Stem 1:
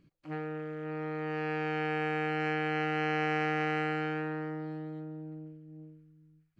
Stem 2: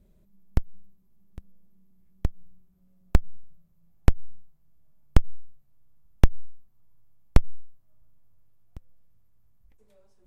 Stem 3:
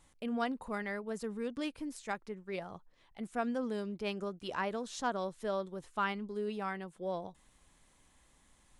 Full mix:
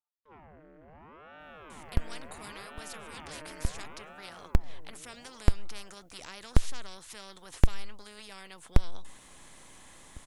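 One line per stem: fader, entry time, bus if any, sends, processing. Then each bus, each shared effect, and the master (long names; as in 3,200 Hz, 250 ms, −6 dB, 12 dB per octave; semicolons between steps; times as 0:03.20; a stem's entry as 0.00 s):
−16.0 dB, 0.00 s, no send, comb filter 6.6 ms, depth 43%; noise gate with hold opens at −48 dBFS; ring modulator whose carrier an LFO sweeps 590 Hz, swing 80%, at 0.71 Hz
−5.0 dB, 1.40 s, no send, no processing
−1.0 dB, 1.70 s, no send, every bin compressed towards the loudest bin 4 to 1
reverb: not used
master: no processing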